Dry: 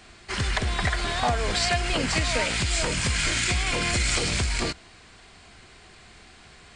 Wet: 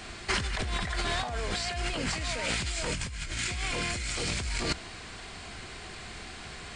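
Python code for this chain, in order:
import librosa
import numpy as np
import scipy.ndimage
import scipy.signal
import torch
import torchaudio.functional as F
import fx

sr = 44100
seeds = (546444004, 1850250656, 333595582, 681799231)

y = fx.low_shelf(x, sr, hz=87.0, db=11.0, at=(2.94, 3.39))
y = fx.over_compress(y, sr, threshold_db=-32.0, ratio=-1.0)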